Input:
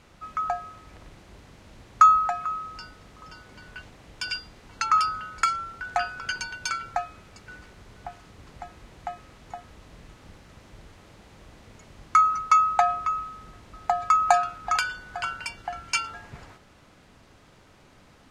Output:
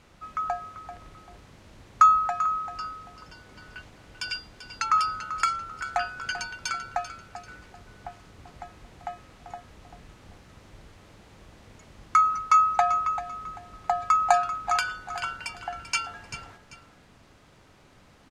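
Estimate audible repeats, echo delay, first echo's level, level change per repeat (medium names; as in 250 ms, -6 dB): 2, 390 ms, -12.0 dB, -10.5 dB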